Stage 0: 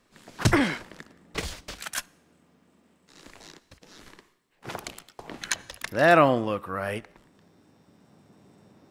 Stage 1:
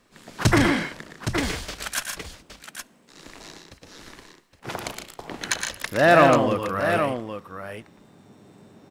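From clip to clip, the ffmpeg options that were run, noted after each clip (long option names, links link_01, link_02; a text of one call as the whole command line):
ffmpeg -i in.wav -filter_complex "[0:a]aecho=1:1:99|117|152|816:0.119|0.501|0.335|0.335,asplit=2[link_01][link_02];[link_02]asoftclip=type=tanh:threshold=-21.5dB,volume=-4.5dB[link_03];[link_01][link_03]amix=inputs=2:normalize=0" out.wav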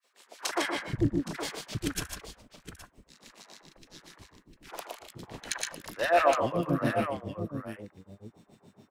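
ffmpeg -i in.wav -filter_complex "[0:a]acrossover=split=1200[link_01][link_02];[link_01]aeval=exprs='val(0)*(1-1/2+1/2*cos(2*PI*7.2*n/s))':channel_layout=same[link_03];[link_02]aeval=exprs='val(0)*(1-1/2-1/2*cos(2*PI*7.2*n/s))':channel_layout=same[link_04];[link_03][link_04]amix=inputs=2:normalize=0,acrossover=split=400|1700[link_05][link_06][link_07];[link_06]adelay=40[link_08];[link_05]adelay=480[link_09];[link_09][link_08][link_07]amix=inputs=3:normalize=0,volume=-1.5dB" out.wav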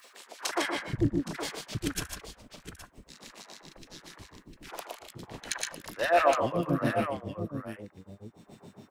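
ffmpeg -i in.wav -af "acompressor=mode=upward:threshold=-41dB:ratio=2.5" out.wav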